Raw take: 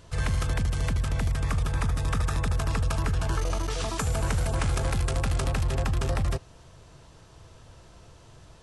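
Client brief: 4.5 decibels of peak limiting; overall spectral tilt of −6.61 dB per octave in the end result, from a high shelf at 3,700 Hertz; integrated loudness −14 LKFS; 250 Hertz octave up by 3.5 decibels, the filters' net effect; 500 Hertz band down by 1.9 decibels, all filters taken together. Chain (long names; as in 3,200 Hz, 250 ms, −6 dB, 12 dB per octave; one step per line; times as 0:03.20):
parametric band 250 Hz +6.5 dB
parametric band 500 Hz −4 dB
high-shelf EQ 3,700 Hz −8 dB
level +15.5 dB
brickwall limiter −4.5 dBFS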